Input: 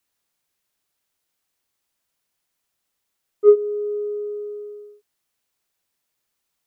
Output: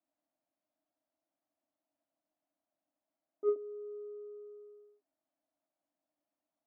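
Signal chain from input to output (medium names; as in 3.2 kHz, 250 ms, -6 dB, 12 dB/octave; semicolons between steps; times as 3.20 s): two resonant band-passes 430 Hz, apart 1.1 oct; trim +6 dB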